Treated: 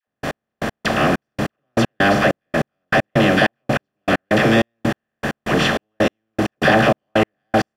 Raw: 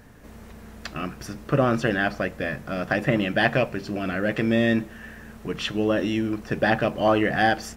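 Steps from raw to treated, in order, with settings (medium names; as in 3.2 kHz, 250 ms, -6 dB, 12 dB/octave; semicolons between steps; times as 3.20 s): spectral levelling over time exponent 0.4; phase dispersion lows, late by 76 ms, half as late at 740 Hz; in parallel at +1.5 dB: peak limiter -10 dBFS, peak gain reduction 6.5 dB; on the sum: trance gate "...x....x..xxxx" 195 bpm -60 dB; trim -2.5 dB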